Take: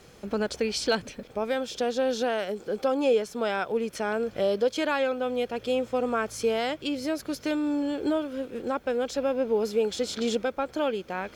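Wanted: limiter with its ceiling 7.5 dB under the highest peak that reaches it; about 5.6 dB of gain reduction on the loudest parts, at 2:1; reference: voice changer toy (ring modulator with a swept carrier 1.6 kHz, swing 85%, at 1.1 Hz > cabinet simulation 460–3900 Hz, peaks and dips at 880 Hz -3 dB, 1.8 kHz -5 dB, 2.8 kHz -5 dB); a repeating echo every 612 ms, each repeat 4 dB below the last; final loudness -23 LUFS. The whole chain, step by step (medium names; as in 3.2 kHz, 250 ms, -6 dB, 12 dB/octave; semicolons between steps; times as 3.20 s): compression 2:1, threshold -30 dBFS; peak limiter -26 dBFS; feedback delay 612 ms, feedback 63%, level -4 dB; ring modulator with a swept carrier 1.6 kHz, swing 85%, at 1.1 Hz; cabinet simulation 460–3900 Hz, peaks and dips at 880 Hz -3 dB, 1.8 kHz -5 dB, 2.8 kHz -5 dB; trim +14 dB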